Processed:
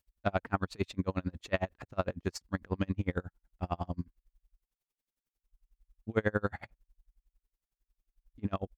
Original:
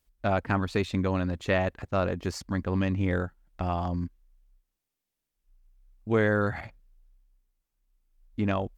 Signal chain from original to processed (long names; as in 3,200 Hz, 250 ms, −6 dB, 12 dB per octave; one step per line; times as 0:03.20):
tremolo with a sine in dB 11 Hz, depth 36 dB